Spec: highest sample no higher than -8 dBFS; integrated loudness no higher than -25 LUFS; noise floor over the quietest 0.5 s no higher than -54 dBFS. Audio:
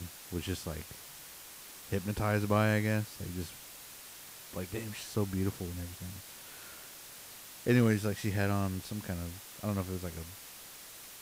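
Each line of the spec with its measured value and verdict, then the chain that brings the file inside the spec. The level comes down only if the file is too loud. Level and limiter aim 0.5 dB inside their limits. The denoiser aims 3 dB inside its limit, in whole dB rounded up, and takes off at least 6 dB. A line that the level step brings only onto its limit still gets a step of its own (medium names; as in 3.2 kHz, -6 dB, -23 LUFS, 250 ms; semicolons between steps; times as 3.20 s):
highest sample -17.0 dBFS: pass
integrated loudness -34.0 LUFS: pass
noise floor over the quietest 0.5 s -50 dBFS: fail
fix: noise reduction 7 dB, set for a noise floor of -50 dBFS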